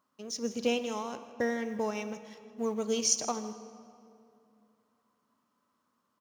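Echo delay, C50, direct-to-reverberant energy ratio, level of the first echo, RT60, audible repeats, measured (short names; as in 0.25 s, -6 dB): 0.159 s, 11.0 dB, 10.5 dB, -16.5 dB, 2.6 s, 1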